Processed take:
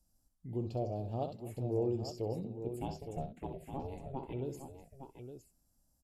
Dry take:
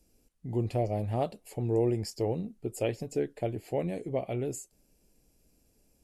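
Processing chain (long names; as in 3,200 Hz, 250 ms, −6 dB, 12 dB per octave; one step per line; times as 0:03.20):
0:02.68–0:04.33: ring modulation 270 Hz
phaser swept by the level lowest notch 400 Hz, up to 2,000 Hz, full sweep at −29.5 dBFS
multi-tap delay 64/253/862 ms −9/−17/−9 dB
level −6.5 dB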